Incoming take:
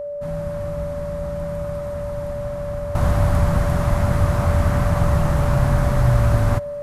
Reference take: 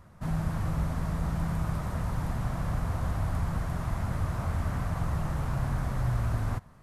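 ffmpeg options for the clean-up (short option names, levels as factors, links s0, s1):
-af "bandreject=f=580:w=30,asetnsamples=n=441:p=0,asendcmd='2.95 volume volume -12dB',volume=1"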